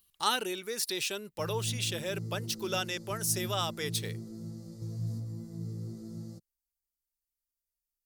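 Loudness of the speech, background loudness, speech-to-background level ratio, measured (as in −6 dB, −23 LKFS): −33.0 LKFS, −40.5 LKFS, 7.5 dB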